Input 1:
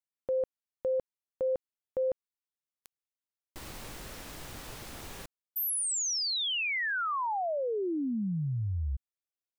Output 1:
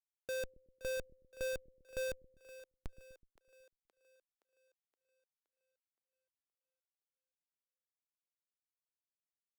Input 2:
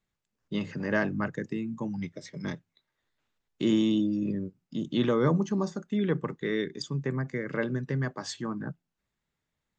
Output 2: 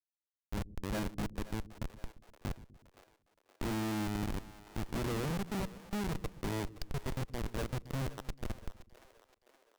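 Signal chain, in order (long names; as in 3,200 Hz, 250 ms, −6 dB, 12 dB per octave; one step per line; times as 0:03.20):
comparator with hysteresis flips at −26 dBFS
echo with a time of its own for lows and highs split 380 Hz, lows 124 ms, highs 520 ms, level −15.5 dB
level −3.5 dB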